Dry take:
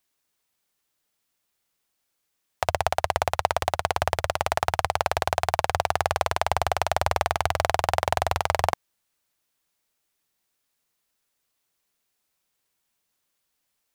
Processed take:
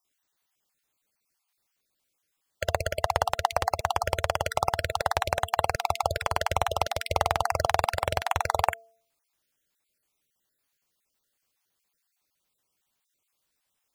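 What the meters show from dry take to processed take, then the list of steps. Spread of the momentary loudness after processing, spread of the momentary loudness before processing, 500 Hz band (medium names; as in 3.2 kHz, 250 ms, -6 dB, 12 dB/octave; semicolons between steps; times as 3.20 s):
3 LU, 2 LU, -2.0 dB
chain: random holes in the spectrogram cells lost 32%; de-hum 225.8 Hz, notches 3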